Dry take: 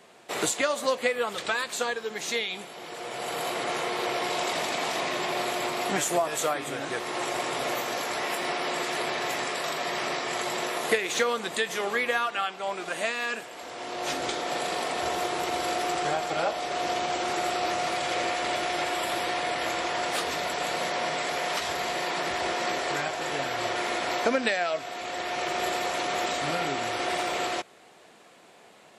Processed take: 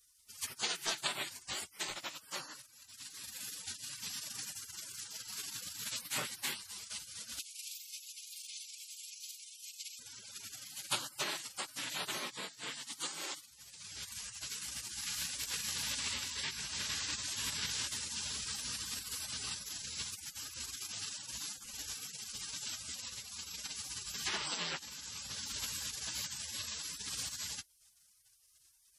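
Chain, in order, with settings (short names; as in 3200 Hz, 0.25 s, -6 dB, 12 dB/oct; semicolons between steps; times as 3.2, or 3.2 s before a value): spectral gate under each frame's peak -25 dB weak; 7.39–9.99 brick-wall FIR high-pass 2100 Hz; gain +4 dB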